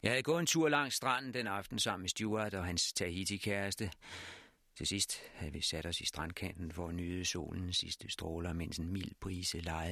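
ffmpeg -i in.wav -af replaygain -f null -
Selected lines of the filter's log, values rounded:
track_gain = +14.8 dB
track_peak = 0.115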